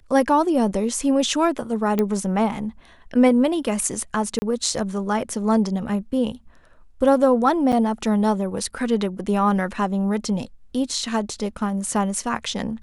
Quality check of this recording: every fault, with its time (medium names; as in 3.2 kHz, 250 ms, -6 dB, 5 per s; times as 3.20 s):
1.99 s: pop -9 dBFS
4.39–4.42 s: dropout 30 ms
7.72–7.73 s: dropout 7.5 ms